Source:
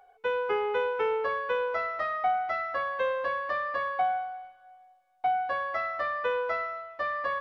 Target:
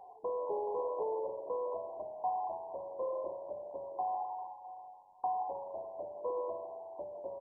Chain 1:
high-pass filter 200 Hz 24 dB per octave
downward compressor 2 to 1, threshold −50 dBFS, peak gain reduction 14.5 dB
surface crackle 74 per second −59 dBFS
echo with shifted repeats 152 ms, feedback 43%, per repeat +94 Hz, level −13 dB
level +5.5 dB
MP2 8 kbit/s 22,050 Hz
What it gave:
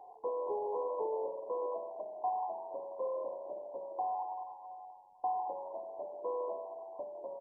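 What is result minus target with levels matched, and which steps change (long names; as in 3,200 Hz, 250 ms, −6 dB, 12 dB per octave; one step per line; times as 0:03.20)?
125 Hz band −8.5 dB
change: high-pass filter 79 Hz 24 dB per octave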